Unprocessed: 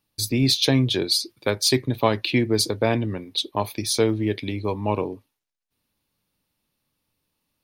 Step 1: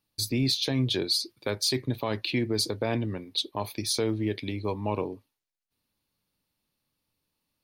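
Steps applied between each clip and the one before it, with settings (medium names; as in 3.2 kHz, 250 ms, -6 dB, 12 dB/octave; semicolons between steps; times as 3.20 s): peak limiter -13 dBFS, peak gain reduction 8.5 dB; peaking EQ 4.4 kHz +3.5 dB 0.24 oct; trim -4.5 dB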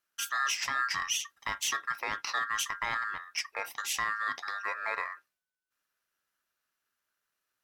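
ring modulator 1.5 kHz; in parallel at -10.5 dB: hard clipper -33 dBFS, distortion -5 dB; on the sum: trim -3 dB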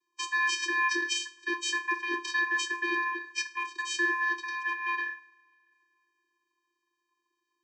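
every band turned upside down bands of 500 Hz; reverberation, pre-delay 3 ms, DRR 9 dB; vocoder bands 16, square 346 Hz; trim +3.5 dB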